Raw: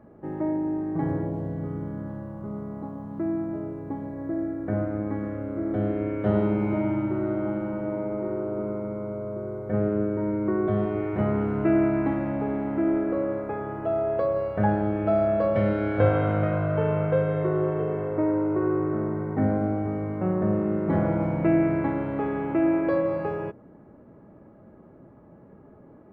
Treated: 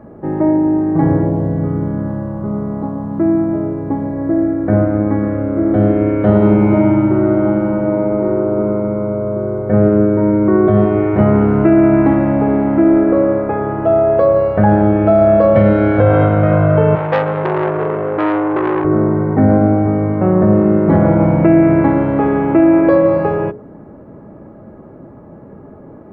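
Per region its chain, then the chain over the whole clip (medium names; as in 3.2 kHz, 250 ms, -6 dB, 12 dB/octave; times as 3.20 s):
16.95–18.85 s: high-pass 220 Hz 6 dB/octave + transformer saturation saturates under 1.5 kHz
whole clip: treble shelf 2.2 kHz -8 dB; hum notches 60/120/180/240/300/360/420 Hz; loudness maximiser +15.5 dB; trim -1 dB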